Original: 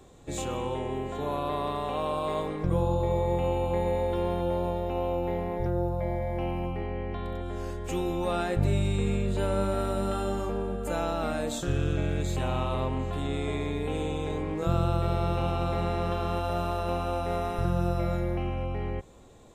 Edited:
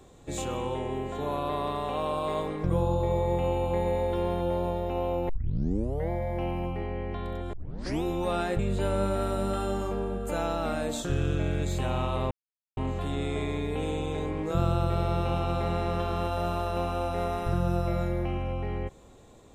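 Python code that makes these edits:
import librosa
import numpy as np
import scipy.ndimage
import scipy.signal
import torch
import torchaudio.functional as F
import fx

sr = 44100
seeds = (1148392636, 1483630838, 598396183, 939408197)

y = fx.edit(x, sr, fx.tape_start(start_s=5.29, length_s=0.81),
    fx.tape_start(start_s=7.53, length_s=0.5),
    fx.cut(start_s=8.59, length_s=0.58),
    fx.insert_silence(at_s=12.89, length_s=0.46), tone=tone)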